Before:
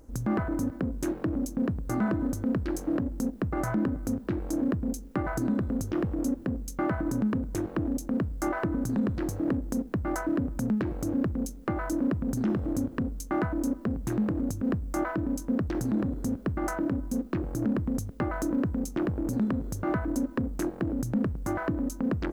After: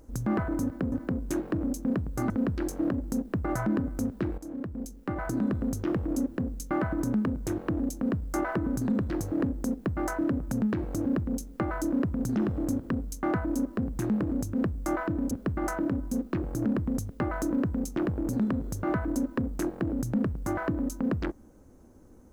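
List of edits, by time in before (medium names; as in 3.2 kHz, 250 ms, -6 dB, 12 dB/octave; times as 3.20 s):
0.64–0.92 s: loop, 2 plays
2.02–2.38 s: delete
4.46–5.59 s: fade in, from -13 dB
15.39–16.31 s: delete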